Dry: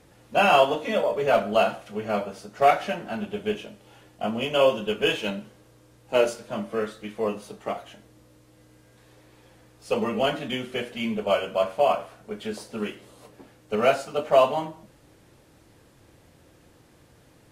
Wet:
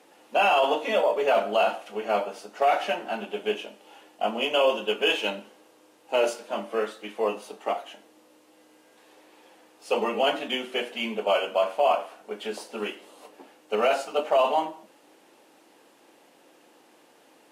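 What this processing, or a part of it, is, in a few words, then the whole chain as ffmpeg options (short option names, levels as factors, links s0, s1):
laptop speaker: -af "highpass=f=260:w=0.5412,highpass=f=260:w=1.3066,equalizer=f=830:t=o:w=0.58:g=6,equalizer=f=2800:t=o:w=0.36:g=5,alimiter=limit=0.224:level=0:latency=1:release=12"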